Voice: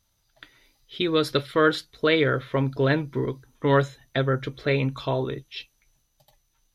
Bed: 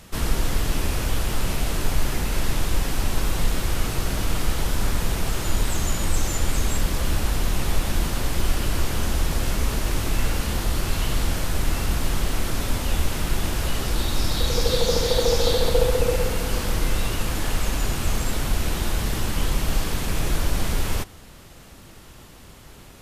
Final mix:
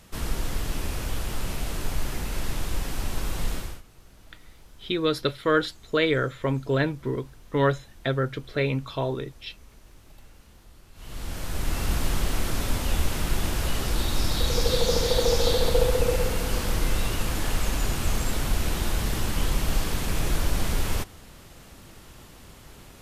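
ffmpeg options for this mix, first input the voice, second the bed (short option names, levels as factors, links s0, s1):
-filter_complex "[0:a]adelay=3900,volume=0.794[s0];[1:a]volume=10,afade=t=out:st=3.53:d=0.29:silence=0.0794328,afade=t=in:st=10.94:d=0.99:silence=0.0501187[s1];[s0][s1]amix=inputs=2:normalize=0"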